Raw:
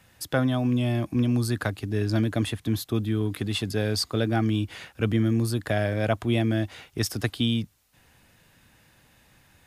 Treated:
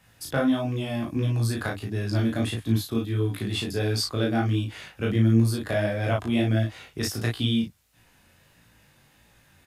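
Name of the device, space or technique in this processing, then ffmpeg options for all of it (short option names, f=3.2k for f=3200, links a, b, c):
double-tracked vocal: -filter_complex "[0:a]asplit=2[a][b];[b]adelay=35,volume=-2.5dB[c];[a][c]amix=inputs=2:normalize=0,flanger=delay=17.5:depth=4.3:speed=1.5,volume=1dB"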